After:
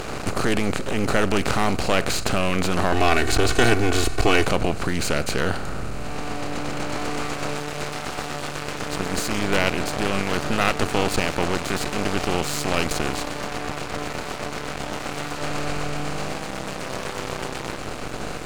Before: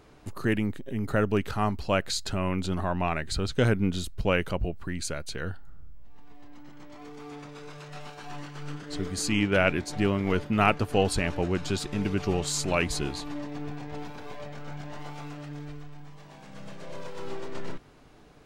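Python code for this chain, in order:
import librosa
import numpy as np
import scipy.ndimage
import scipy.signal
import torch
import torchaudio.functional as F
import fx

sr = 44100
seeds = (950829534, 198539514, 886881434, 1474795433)

y = fx.bin_compress(x, sr, power=0.4)
y = fx.comb(y, sr, ms=2.7, depth=0.85, at=(2.92, 4.47))
y = np.maximum(y, 0.0)
y = F.gain(torch.from_numpy(y), 2.5).numpy()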